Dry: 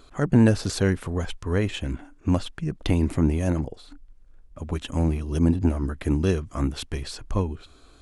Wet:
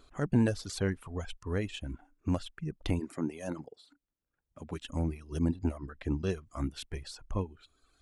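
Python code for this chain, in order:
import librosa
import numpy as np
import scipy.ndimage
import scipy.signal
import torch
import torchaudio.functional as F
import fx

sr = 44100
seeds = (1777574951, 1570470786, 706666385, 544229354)

y = fx.highpass(x, sr, hz=fx.line((2.99, 230.0), (4.81, 110.0)), slope=12, at=(2.99, 4.81), fade=0.02)
y = fx.dereverb_blind(y, sr, rt60_s=1.2)
y = fx.lowpass(y, sr, hz=fx.line((5.77, 3000.0), (6.29, 7100.0)), slope=12, at=(5.77, 6.29), fade=0.02)
y = y * librosa.db_to_amplitude(-8.0)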